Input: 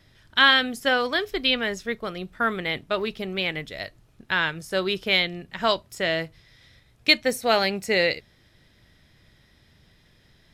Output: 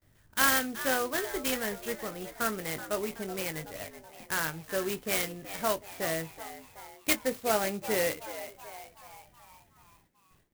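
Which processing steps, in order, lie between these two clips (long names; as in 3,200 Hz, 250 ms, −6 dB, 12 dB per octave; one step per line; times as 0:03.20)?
noise gate with hold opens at −48 dBFS
high-shelf EQ 3,500 Hz −8 dB
double-tracking delay 19 ms −10 dB
echo with shifted repeats 376 ms, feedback 55%, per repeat +100 Hz, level −13 dB
converter with an unsteady clock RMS 0.068 ms
level −6.5 dB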